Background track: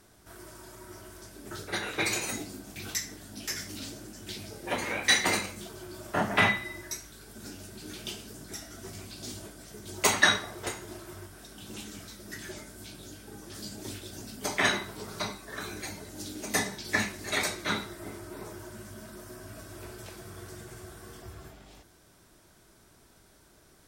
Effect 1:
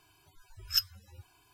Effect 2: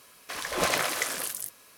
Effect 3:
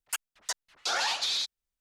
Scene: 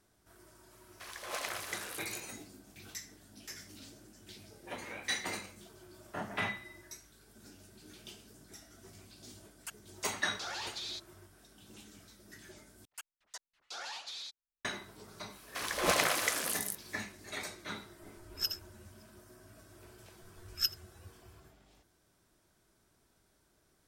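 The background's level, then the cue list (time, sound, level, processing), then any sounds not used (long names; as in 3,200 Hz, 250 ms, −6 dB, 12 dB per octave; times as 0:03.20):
background track −12 dB
0:00.71: mix in 2 −12 dB + high-pass filter 510 Hz
0:09.54: mix in 3 −12 dB
0:12.85: overwrite with 3 −14.5 dB
0:15.26: mix in 2 −2.5 dB, fades 0.10 s
0:17.67: mix in 1 −6.5 dB + delay that plays each chunk backwards 271 ms, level −7 dB
0:19.87: mix in 1 −3.5 dB + single-tap delay 82 ms −21.5 dB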